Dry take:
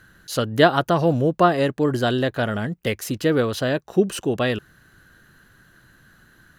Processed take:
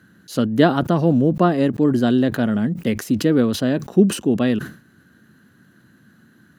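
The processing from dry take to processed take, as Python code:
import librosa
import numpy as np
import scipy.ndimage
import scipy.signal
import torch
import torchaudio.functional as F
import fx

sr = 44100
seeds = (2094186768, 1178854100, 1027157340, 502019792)

y = scipy.signal.sosfilt(scipy.signal.butter(4, 74.0, 'highpass', fs=sr, output='sos'), x)
y = fx.peak_eq(y, sr, hz=230.0, db=14.5, octaves=1.2)
y = fx.sustainer(y, sr, db_per_s=130.0)
y = F.gain(torch.from_numpy(y), -4.5).numpy()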